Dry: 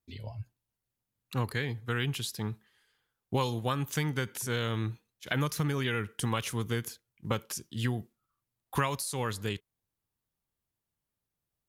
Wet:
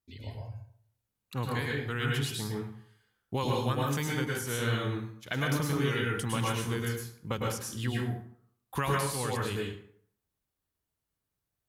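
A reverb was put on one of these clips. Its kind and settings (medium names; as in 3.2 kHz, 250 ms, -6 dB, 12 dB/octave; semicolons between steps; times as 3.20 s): plate-style reverb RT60 0.6 s, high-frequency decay 0.65×, pre-delay 95 ms, DRR -2.5 dB; trim -3 dB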